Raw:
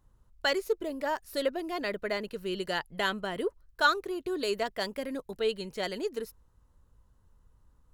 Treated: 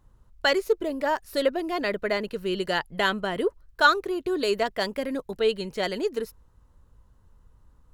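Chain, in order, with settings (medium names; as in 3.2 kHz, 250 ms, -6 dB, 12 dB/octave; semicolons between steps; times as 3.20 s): treble shelf 5.2 kHz -4.5 dB; trim +6 dB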